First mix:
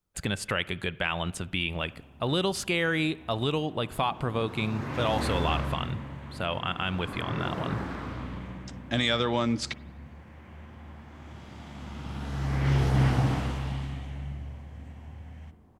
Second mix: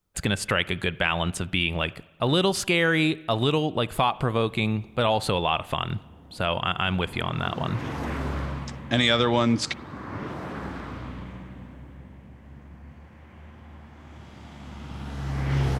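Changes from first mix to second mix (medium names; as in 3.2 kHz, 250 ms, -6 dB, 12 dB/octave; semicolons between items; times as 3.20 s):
speech +5.0 dB; background: entry +2.85 s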